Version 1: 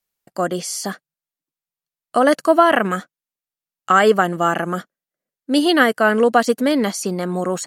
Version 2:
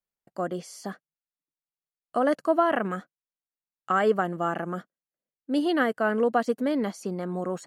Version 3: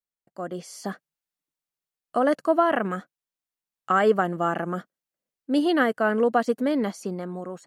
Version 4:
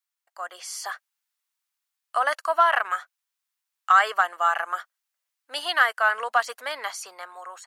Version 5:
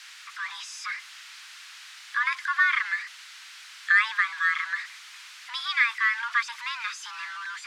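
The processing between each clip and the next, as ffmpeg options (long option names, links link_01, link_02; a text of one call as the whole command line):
ffmpeg -i in.wav -af "highshelf=frequency=2400:gain=-11.5,volume=-8dB" out.wav
ffmpeg -i in.wav -af "dynaudnorm=framelen=140:gausssize=9:maxgain=11dB,volume=-6.5dB" out.wav
ffmpeg -i in.wav -filter_complex "[0:a]highpass=frequency=910:width=0.5412,highpass=frequency=910:width=1.3066,asplit=2[link_01][link_02];[link_02]asoftclip=type=tanh:threshold=-22.5dB,volume=-10dB[link_03];[link_01][link_03]amix=inputs=2:normalize=0,volume=5dB" out.wav
ffmpeg -i in.wav -af "aeval=exprs='val(0)+0.5*0.0376*sgn(val(0))':channel_layout=same,highpass=630,lowpass=4300,afreqshift=460,volume=-3.5dB" out.wav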